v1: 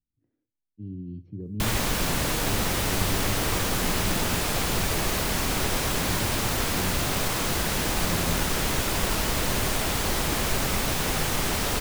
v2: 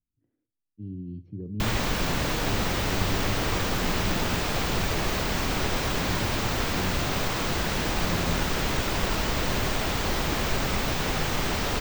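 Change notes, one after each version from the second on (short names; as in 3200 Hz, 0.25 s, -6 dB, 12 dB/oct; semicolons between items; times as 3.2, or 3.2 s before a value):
background: add bell 11000 Hz -15 dB 0.77 oct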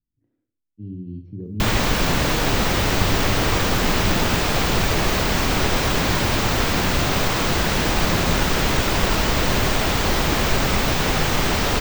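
speech: send +11.0 dB; background +7.0 dB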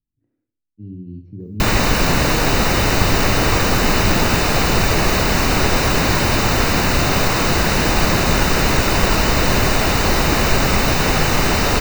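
background +4.0 dB; master: add Butterworth band-stop 3300 Hz, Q 7.5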